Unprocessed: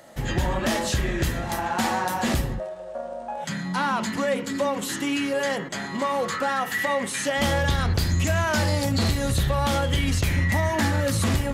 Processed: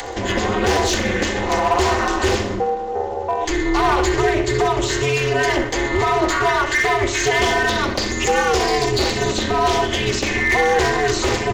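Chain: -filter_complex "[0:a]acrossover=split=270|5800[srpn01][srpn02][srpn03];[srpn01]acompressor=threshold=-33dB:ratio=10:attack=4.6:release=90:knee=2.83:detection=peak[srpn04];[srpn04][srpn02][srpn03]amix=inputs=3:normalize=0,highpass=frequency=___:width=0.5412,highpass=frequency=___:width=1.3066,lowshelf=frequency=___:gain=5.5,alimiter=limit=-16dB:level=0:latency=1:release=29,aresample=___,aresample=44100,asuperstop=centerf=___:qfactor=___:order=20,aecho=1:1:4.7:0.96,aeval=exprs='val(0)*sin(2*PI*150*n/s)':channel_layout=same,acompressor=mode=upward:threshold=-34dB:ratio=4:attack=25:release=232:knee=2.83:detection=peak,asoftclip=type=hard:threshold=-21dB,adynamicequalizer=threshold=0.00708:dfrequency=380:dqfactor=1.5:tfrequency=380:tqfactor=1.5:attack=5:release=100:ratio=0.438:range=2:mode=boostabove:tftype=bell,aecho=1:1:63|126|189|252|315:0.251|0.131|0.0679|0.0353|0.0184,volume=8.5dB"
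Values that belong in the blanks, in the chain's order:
48, 48, 61, 16000, 1500, 7.1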